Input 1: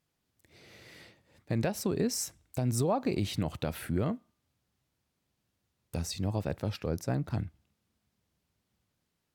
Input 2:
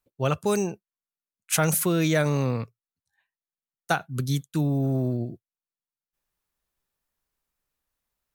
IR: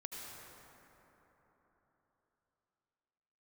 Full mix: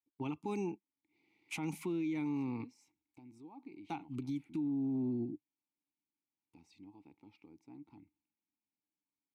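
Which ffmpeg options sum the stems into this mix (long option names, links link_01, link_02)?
-filter_complex "[0:a]alimiter=level_in=1.5dB:limit=-24dB:level=0:latency=1:release=227,volume=-1.5dB,adelay=600,volume=-7.5dB[link_01];[1:a]lowshelf=frequency=320:gain=6.5,agate=range=-11dB:threshold=-42dB:ratio=16:detection=peak,volume=2.5dB[link_02];[link_01][link_02]amix=inputs=2:normalize=0,asplit=3[link_03][link_04][link_05];[link_03]bandpass=frequency=300:width_type=q:width=8,volume=0dB[link_06];[link_04]bandpass=frequency=870:width_type=q:width=8,volume=-6dB[link_07];[link_05]bandpass=frequency=2240:width_type=q:width=8,volume=-9dB[link_08];[link_06][link_07][link_08]amix=inputs=3:normalize=0,highshelf=frequency=2200:gain=7,alimiter=level_in=6dB:limit=-24dB:level=0:latency=1:release=145,volume=-6dB"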